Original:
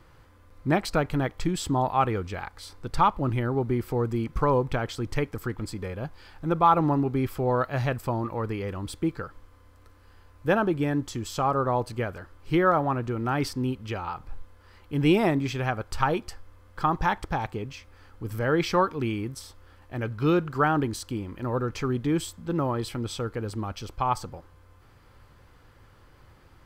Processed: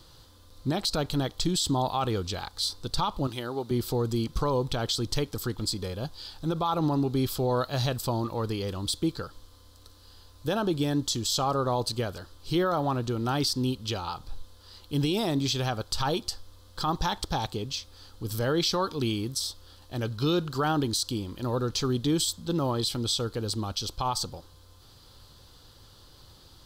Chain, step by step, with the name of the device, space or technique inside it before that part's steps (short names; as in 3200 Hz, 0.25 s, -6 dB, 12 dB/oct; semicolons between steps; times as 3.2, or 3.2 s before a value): 3.27–3.71 HPF 570 Hz 6 dB/oct; over-bright horn tweeter (resonant high shelf 2900 Hz +10 dB, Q 3; limiter -17.5 dBFS, peak gain reduction 10 dB)